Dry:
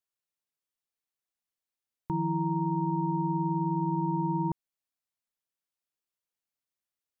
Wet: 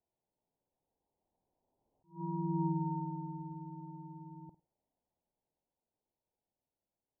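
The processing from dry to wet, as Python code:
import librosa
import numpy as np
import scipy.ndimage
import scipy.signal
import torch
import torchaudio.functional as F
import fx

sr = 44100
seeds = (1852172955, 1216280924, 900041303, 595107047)

p1 = x + 0.5 * 10.0 ** (-46.5 / 20.0) * np.sign(x)
p2 = fx.doppler_pass(p1, sr, speed_mps=10, closest_m=3.1, pass_at_s=2.64)
p3 = scipy.signal.sosfilt(scipy.signal.butter(12, 940.0, 'lowpass', fs=sr, output='sos'), p2)
p4 = p3 + fx.room_flutter(p3, sr, wall_m=8.8, rt60_s=0.25, dry=0)
p5 = fx.attack_slew(p4, sr, db_per_s=220.0)
y = p5 * librosa.db_to_amplitude(-5.5)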